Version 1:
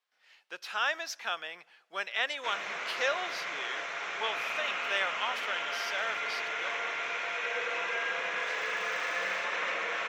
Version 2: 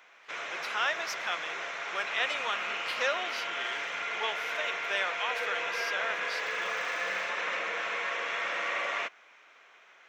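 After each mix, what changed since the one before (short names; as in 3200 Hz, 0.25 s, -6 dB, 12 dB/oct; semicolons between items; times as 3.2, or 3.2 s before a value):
background: entry -2.15 s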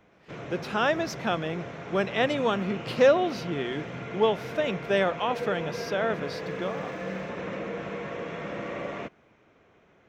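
background -10.5 dB; master: remove HPF 1300 Hz 12 dB/oct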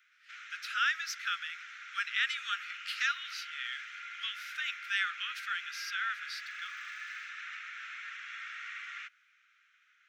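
master: add steep high-pass 1300 Hz 96 dB/oct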